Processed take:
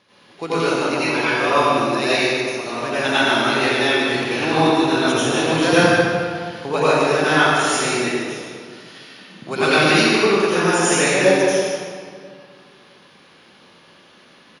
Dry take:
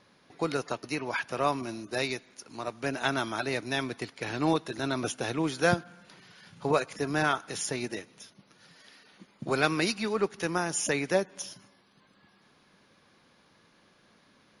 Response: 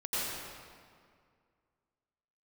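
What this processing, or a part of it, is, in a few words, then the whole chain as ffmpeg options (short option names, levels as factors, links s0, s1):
PA in a hall: -filter_complex "[0:a]highpass=f=130:p=1,equalizer=f=3000:t=o:w=0.71:g=6,aecho=1:1:149:0.355[s0];[1:a]atrim=start_sample=2205[s1];[s0][s1]afir=irnorm=-1:irlink=0,volume=1.88"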